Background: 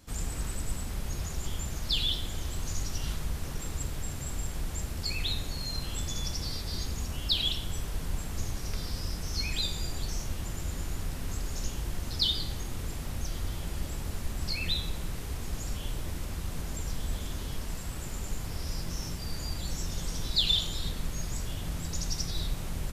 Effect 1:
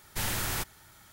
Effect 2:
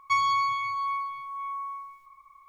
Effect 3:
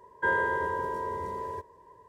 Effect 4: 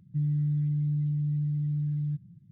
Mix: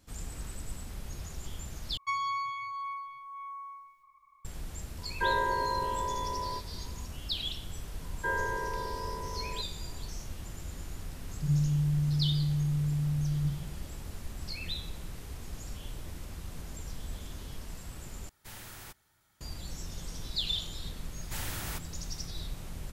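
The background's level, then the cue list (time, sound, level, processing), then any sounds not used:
background -6.5 dB
1.97 replace with 2 -8 dB
4.98 add 3 -3.5 dB + doubler 19 ms -3.5 dB
8.01 add 3 -5.5 dB
11.28 add 4 -3.5 dB + Schroeder reverb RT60 0.93 s, DRR -7 dB
18.29 replace with 1 -15 dB
21.15 add 1 -7 dB

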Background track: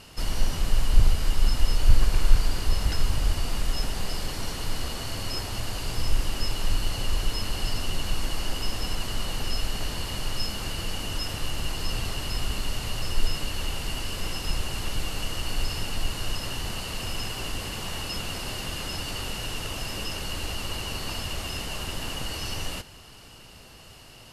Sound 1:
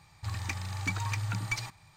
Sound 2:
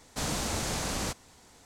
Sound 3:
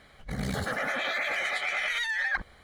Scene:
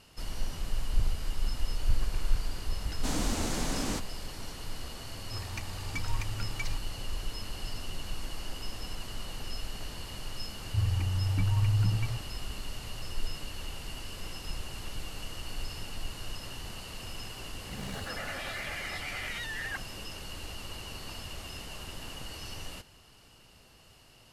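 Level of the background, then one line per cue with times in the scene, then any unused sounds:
background track -9.5 dB
2.87 add 2 -3 dB + bell 270 Hz +8.5 dB
5.08 add 1 -5.5 dB
10.51 add 1 -7 dB + tilt -4.5 dB/oct
17.4 add 3 -9 dB

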